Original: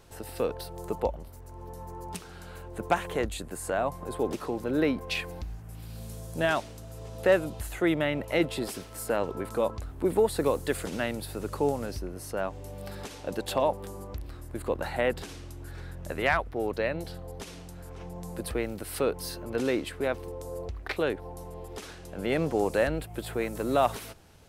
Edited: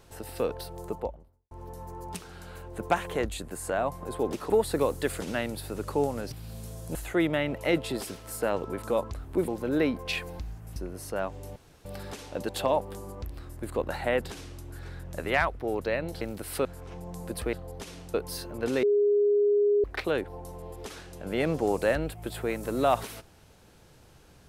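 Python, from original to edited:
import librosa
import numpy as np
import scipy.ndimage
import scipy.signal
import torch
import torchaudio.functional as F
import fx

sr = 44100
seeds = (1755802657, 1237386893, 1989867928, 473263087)

y = fx.studio_fade_out(x, sr, start_s=0.68, length_s=0.83)
y = fx.edit(y, sr, fx.swap(start_s=4.5, length_s=1.28, other_s=10.15, other_length_s=1.82),
    fx.cut(start_s=6.41, length_s=1.21),
    fx.insert_room_tone(at_s=12.77, length_s=0.29),
    fx.swap(start_s=17.13, length_s=0.61, other_s=18.62, other_length_s=0.44),
    fx.bleep(start_s=19.75, length_s=1.01, hz=411.0, db=-19.5), tone=tone)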